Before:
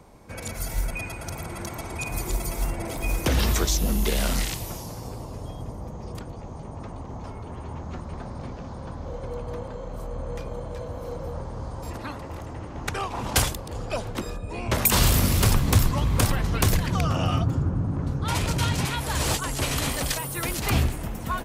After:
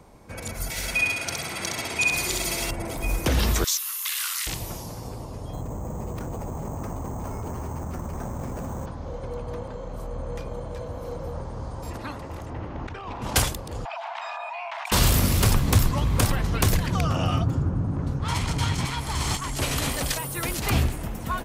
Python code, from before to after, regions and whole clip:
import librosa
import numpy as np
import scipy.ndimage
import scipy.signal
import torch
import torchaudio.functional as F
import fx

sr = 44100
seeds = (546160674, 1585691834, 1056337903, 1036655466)

y = fx.chain(x, sr, fx.weighting(curve='D'),
    fx.echo_feedback(ms=65, feedback_pct=43, wet_db=-3), at=(0.7, 2.71))
y = fx.chain(y, sr, fx.ellip_highpass(hz=1100.0, order=4, stop_db=50),
    fx.high_shelf(hz=8900.0, db=9.5), at=(3.64, 4.47))
y = fx.chain(y, sr, fx.lowpass(hz=2700.0, slope=12),
    fx.resample_bad(factor=6, down='none', up='hold'),
    fx.env_flatten(amount_pct=100), at=(5.53, 8.86))
y = fx.chain(y, sr, fx.lowpass(hz=3700.0, slope=12),
    fx.over_compress(threshold_db=-34.0, ratio=-1.0), at=(12.5, 13.22))
y = fx.chain(y, sr, fx.cheby_ripple_highpass(hz=650.0, ripple_db=6),
    fx.spacing_loss(db_at_10k=30),
    fx.env_flatten(amount_pct=100), at=(13.85, 14.92))
y = fx.chain(y, sr, fx.lower_of_two(delay_ms=0.92),
    fx.lowpass(hz=9700.0, slope=12), at=(18.19, 19.56))